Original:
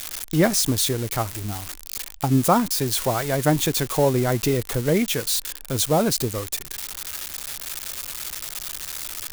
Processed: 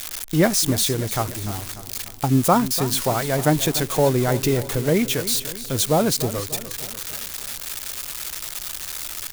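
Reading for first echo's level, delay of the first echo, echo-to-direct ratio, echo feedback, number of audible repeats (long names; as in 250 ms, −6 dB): −14.0 dB, 295 ms, −12.5 dB, 53%, 4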